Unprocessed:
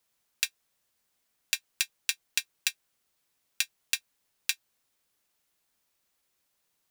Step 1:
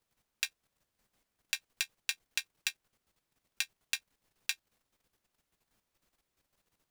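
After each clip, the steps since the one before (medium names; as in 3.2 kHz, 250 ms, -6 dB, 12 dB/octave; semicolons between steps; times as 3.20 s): tilt EQ -2 dB/octave; level held to a coarse grid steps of 9 dB; trim +5.5 dB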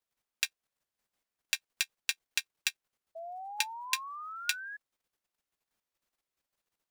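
bass shelf 280 Hz -9.5 dB; painted sound rise, 3.15–4.77 s, 650–1700 Hz -40 dBFS; upward expansion 1.5:1, over -50 dBFS; trim +3 dB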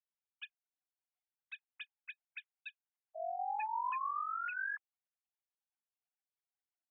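formants replaced by sine waves; trim -3.5 dB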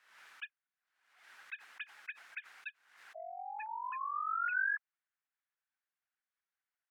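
compression, threshold -41 dBFS, peak gain reduction 7.5 dB; band-pass filter 1.6 kHz, Q 2.4; swell ahead of each attack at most 71 dB/s; trim +10.5 dB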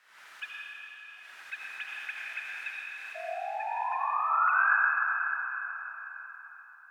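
reverberation RT60 4.3 s, pre-delay 35 ms, DRR -4.5 dB; trim +5 dB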